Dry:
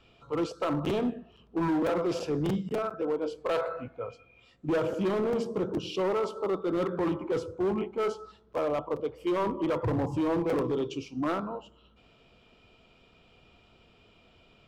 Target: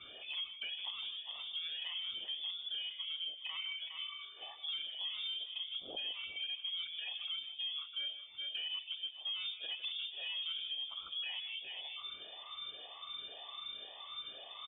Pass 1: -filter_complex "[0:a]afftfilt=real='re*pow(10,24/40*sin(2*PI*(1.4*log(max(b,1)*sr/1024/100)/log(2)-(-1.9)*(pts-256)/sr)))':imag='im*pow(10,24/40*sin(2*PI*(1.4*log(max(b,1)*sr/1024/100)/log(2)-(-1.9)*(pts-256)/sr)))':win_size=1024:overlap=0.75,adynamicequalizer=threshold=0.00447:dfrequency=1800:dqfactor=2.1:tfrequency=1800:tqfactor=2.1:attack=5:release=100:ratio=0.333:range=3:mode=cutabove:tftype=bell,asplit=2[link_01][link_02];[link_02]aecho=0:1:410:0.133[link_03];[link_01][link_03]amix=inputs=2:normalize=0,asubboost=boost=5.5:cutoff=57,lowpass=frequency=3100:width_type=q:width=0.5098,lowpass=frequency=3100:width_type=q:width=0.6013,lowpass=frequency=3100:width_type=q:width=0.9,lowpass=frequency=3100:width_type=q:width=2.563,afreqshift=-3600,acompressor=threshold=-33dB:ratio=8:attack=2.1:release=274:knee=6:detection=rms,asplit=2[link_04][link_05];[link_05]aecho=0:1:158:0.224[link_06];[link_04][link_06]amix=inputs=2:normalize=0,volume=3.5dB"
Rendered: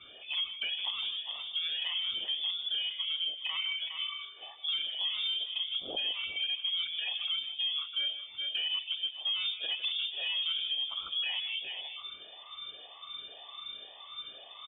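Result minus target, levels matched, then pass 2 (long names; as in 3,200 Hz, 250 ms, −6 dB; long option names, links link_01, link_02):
downward compressor: peak gain reduction −7.5 dB
-filter_complex "[0:a]afftfilt=real='re*pow(10,24/40*sin(2*PI*(1.4*log(max(b,1)*sr/1024/100)/log(2)-(-1.9)*(pts-256)/sr)))':imag='im*pow(10,24/40*sin(2*PI*(1.4*log(max(b,1)*sr/1024/100)/log(2)-(-1.9)*(pts-256)/sr)))':win_size=1024:overlap=0.75,adynamicequalizer=threshold=0.00447:dfrequency=1800:dqfactor=2.1:tfrequency=1800:tqfactor=2.1:attack=5:release=100:ratio=0.333:range=3:mode=cutabove:tftype=bell,asplit=2[link_01][link_02];[link_02]aecho=0:1:410:0.133[link_03];[link_01][link_03]amix=inputs=2:normalize=0,asubboost=boost=5.5:cutoff=57,lowpass=frequency=3100:width_type=q:width=0.5098,lowpass=frequency=3100:width_type=q:width=0.6013,lowpass=frequency=3100:width_type=q:width=0.9,lowpass=frequency=3100:width_type=q:width=2.563,afreqshift=-3600,acompressor=threshold=-41.5dB:ratio=8:attack=2.1:release=274:knee=6:detection=rms,asplit=2[link_04][link_05];[link_05]aecho=0:1:158:0.224[link_06];[link_04][link_06]amix=inputs=2:normalize=0,volume=3.5dB"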